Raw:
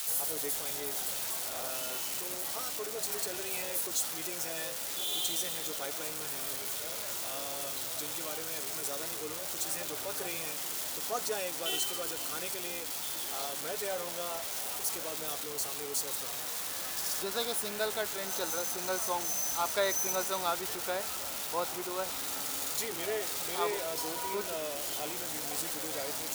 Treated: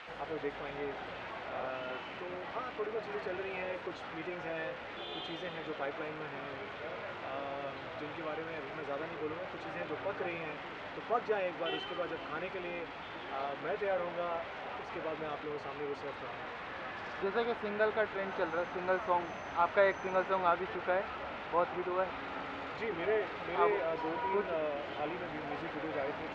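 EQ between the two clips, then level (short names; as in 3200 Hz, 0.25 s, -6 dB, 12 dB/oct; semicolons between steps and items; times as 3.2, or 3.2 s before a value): LPF 2400 Hz 24 dB/oct; +3.0 dB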